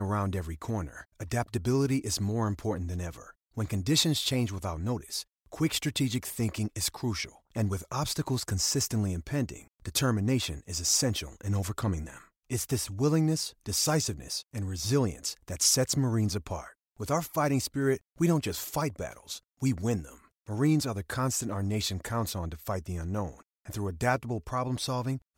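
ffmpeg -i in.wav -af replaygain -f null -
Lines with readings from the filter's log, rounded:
track_gain = +10.8 dB
track_peak = 0.187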